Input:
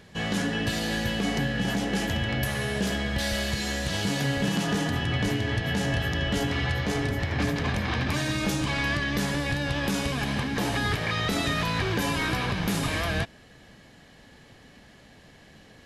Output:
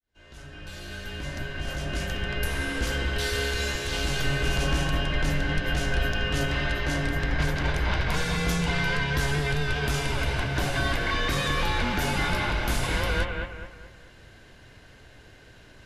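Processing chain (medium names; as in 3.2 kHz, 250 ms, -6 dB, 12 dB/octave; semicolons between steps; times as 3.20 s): fade-in on the opening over 2.98 s; bucket-brigade echo 212 ms, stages 4096, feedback 39%, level -4 dB; frequency shift -140 Hz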